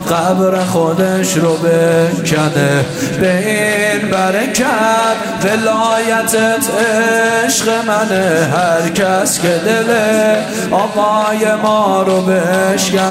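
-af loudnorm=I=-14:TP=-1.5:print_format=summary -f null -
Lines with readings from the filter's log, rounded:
Input Integrated:    -12.5 LUFS
Input True Peak:      -1.8 dBTP
Input LRA:             0.6 LU
Input Threshold:     -22.5 LUFS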